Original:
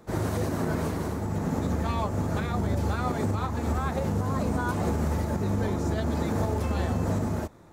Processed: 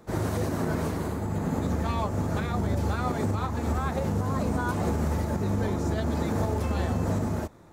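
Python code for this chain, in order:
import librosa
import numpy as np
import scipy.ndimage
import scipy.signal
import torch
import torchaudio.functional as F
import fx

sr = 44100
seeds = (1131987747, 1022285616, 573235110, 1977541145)

y = fx.notch(x, sr, hz=5600.0, q=6.8, at=(1.0, 1.66))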